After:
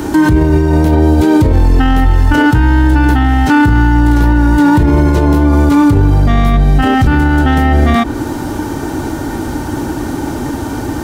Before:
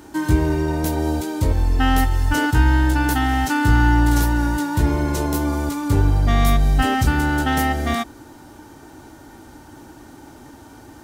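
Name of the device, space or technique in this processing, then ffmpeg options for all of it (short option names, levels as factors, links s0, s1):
mastering chain: -filter_complex "[0:a]equalizer=f=720:t=o:w=0.77:g=-2,acrossover=split=120|3900[s0][s1][s2];[s0]acompressor=threshold=0.0891:ratio=4[s3];[s1]acompressor=threshold=0.0891:ratio=4[s4];[s2]acompressor=threshold=0.00398:ratio=4[s5];[s3][s4][s5]amix=inputs=3:normalize=0,acompressor=threshold=0.0562:ratio=2,tiltshelf=f=970:g=3,alimiter=level_in=14.1:limit=0.891:release=50:level=0:latency=1,volume=0.891"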